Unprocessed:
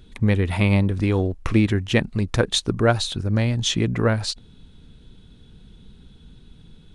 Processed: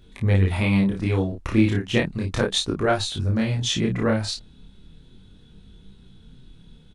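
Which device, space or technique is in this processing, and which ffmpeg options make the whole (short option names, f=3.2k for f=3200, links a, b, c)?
double-tracked vocal: -filter_complex "[0:a]asplit=2[a][b];[b]adelay=31,volume=-3.5dB[c];[a][c]amix=inputs=2:normalize=0,flanger=delay=20:depth=7.8:speed=0.35"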